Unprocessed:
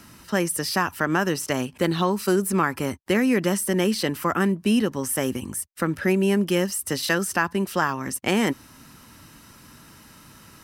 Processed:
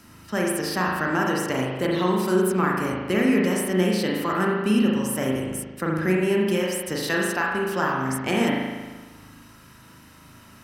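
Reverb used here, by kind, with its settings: spring tank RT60 1.3 s, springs 38 ms, chirp 50 ms, DRR -2.5 dB; gain -4 dB

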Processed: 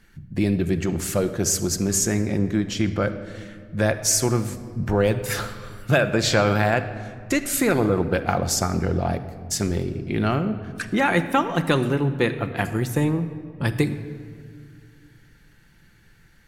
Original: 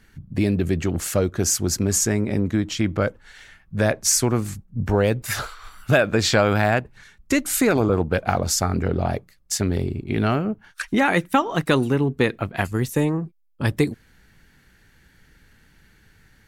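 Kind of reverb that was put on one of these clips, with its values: shoebox room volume 3400 m³, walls mixed, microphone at 0.83 m; gain -1.5 dB

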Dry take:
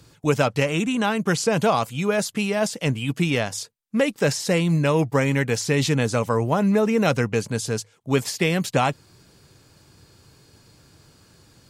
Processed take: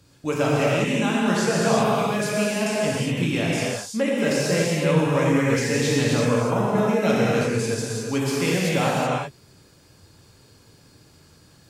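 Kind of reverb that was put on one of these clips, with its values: non-linear reverb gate 0.4 s flat, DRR -6 dB; gain -6.5 dB

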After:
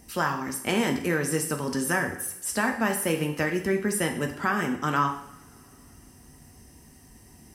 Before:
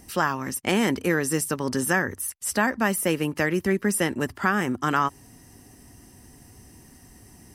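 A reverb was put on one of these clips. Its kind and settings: two-slope reverb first 0.65 s, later 3.1 s, from -25 dB, DRR 3.5 dB; gain -3.5 dB

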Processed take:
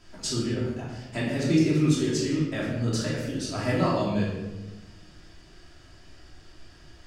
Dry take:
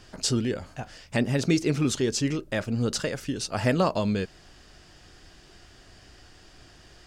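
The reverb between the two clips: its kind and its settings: shoebox room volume 560 m³, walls mixed, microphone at 2.9 m; gain -8.5 dB

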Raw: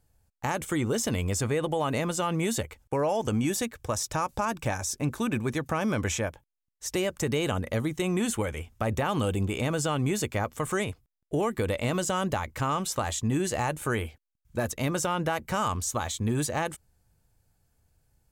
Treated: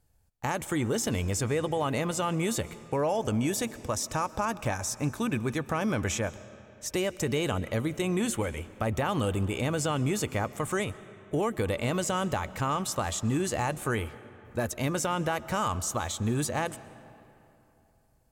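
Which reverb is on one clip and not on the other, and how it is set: digital reverb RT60 3 s, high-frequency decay 0.65×, pre-delay 90 ms, DRR 16.5 dB; gain -1 dB

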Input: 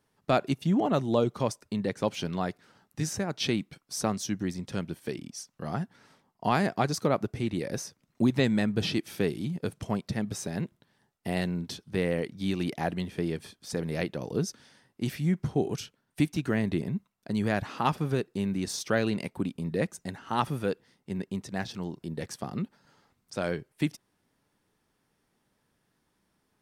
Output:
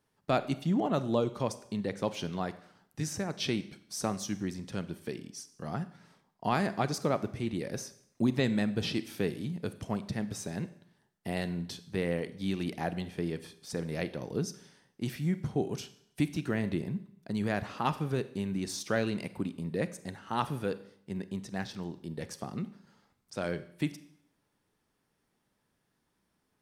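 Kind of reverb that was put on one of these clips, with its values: Schroeder reverb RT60 0.68 s, combs from 31 ms, DRR 13.5 dB; gain -3.5 dB

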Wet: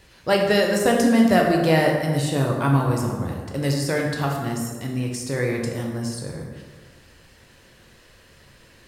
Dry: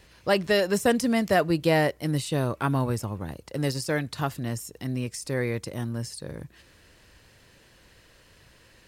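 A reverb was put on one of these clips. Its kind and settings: plate-style reverb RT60 1.5 s, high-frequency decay 0.55×, DRR 0 dB; gain +1.5 dB

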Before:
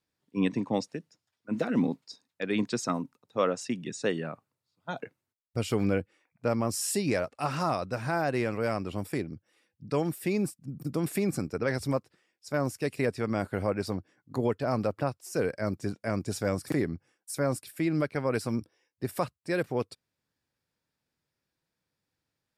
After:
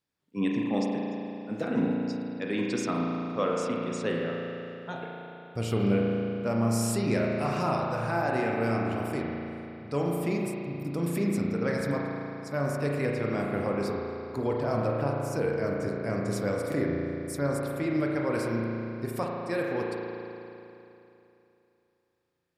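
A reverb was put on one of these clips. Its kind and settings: spring tank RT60 3 s, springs 35 ms, chirp 20 ms, DRR -2 dB; gain -3 dB

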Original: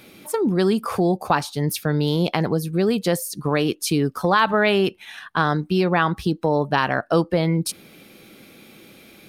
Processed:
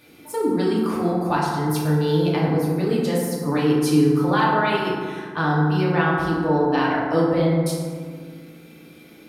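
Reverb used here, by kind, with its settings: FDN reverb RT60 1.9 s, low-frequency decay 1.3×, high-frequency decay 0.4×, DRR -6 dB; gain -8.5 dB

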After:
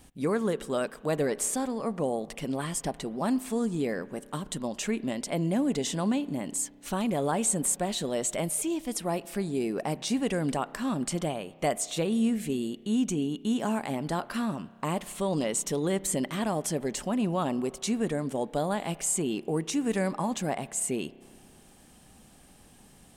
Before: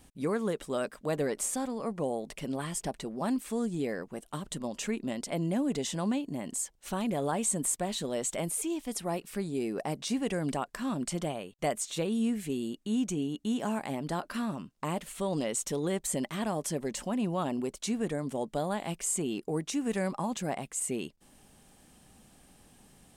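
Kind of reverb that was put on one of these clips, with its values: spring tank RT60 2.1 s, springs 31 ms, chirp 50 ms, DRR 18.5 dB; gain +3 dB

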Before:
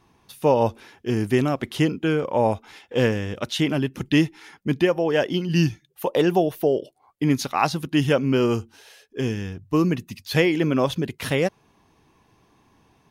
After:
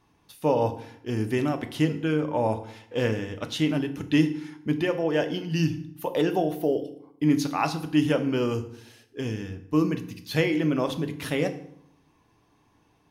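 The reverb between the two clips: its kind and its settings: FDN reverb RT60 0.7 s, low-frequency decay 1.3×, high-frequency decay 0.75×, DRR 7 dB; gain -5.5 dB

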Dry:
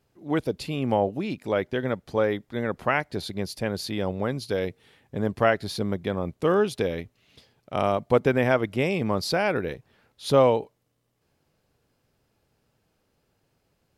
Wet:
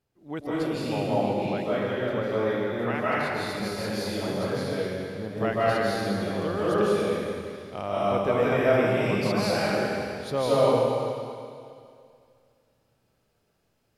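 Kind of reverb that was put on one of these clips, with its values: digital reverb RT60 2.3 s, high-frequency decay 1×, pre-delay 0.115 s, DRR -9 dB; gain -9.5 dB

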